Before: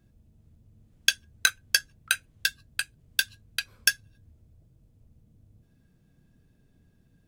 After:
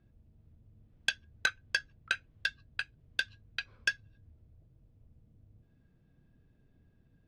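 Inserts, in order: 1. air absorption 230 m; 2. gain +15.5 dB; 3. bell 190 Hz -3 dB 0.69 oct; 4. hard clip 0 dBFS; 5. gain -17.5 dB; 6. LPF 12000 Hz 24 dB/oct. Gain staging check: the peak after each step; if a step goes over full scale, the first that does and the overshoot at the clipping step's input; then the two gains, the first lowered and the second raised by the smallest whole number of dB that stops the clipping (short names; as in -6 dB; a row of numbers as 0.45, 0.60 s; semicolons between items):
-9.5, +6.0, +6.0, 0.0, -17.5, -16.5 dBFS; step 2, 6.0 dB; step 2 +9.5 dB, step 5 -11.5 dB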